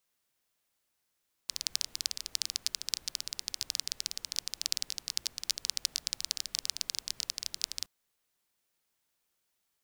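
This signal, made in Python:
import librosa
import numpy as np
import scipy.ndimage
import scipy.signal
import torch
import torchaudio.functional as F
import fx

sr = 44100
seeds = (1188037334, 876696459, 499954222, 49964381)

y = fx.rain(sr, seeds[0], length_s=6.37, drops_per_s=17.0, hz=4900.0, bed_db=-22)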